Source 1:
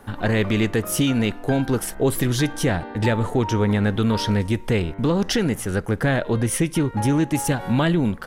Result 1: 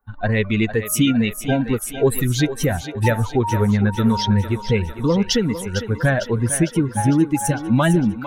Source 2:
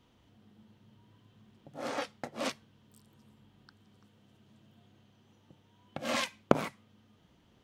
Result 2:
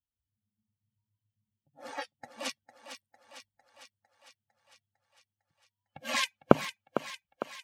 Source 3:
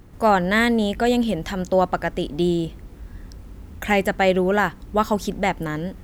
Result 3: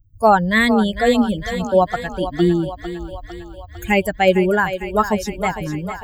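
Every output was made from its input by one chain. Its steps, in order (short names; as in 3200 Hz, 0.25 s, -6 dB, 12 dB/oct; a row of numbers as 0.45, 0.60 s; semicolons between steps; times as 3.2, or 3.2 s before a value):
per-bin expansion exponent 2; thinning echo 0.453 s, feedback 65%, high-pass 310 Hz, level -10 dB; gain +6.5 dB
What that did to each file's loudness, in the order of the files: +2.0, +2.5, +3.0 LU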